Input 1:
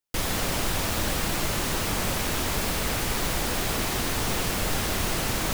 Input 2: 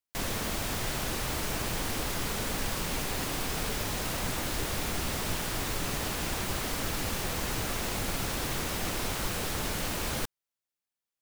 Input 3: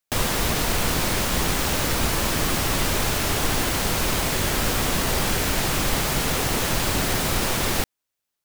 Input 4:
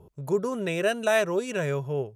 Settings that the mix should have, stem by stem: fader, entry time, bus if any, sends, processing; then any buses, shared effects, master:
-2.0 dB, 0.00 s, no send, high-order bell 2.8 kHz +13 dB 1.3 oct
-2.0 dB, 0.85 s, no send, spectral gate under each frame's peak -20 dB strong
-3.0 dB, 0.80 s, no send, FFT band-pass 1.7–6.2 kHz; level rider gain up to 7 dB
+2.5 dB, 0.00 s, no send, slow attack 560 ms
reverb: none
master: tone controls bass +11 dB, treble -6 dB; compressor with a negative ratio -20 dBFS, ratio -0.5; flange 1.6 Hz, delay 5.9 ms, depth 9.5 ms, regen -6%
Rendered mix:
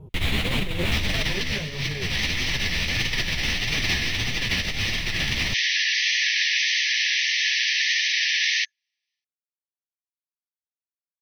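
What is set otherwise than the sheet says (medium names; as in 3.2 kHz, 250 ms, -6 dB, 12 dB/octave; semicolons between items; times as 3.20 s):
stem 2: muted; stem 3 -3.0 dB -> +3.5 dB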